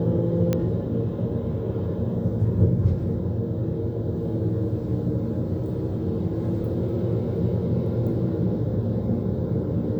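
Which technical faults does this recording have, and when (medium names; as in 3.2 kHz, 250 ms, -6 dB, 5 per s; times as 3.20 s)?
0.53 s: pop -11 dBFS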